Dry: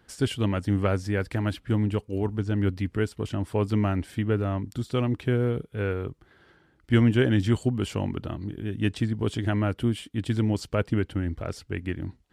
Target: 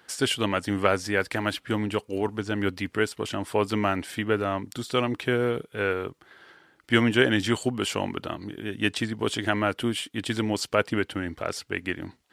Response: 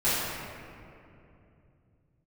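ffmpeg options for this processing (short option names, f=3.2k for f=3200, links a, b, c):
-af "highpass=f=750:p=1,volume=8.5dB"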